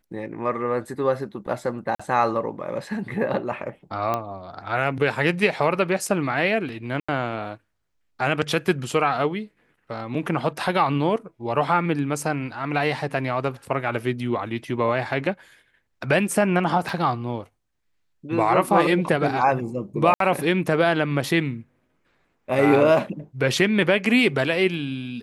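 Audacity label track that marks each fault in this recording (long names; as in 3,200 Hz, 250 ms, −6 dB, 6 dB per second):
1.950000	2.000000	drop-out 45 ms
4.140000	4.140000	click −12 dBFS
7.000000	7.080000	drop-out 85 ms
16.890000	16.890000	drop-out 2.8 ms
20.140000	20.200000	drop-out 63 ms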